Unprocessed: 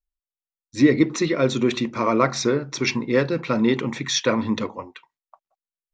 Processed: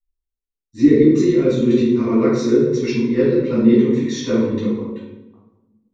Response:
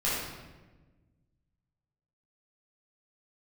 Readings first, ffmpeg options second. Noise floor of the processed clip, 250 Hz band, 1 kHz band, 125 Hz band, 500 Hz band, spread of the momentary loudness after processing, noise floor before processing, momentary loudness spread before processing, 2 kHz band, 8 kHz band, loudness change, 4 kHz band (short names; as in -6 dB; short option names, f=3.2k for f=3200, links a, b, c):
-84 dBFS, +7.0 dB, -7.5 dB, +4.5 dB, +6.0 dB, 8 LU, under -85 dBFS, 7 LU, -6.0 dB, -6.5 dB, +5.5 dB, -6.5 dB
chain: -filter_complex "[0:a]lowshelf=f=550:t=q:w=3:g=7[a];[1:a]atrim=start_sample=2205,asetrate=66150,aresample=44100[b];[a][b]afir=irnorm=-1:irlink=0,volume=-11.5dB"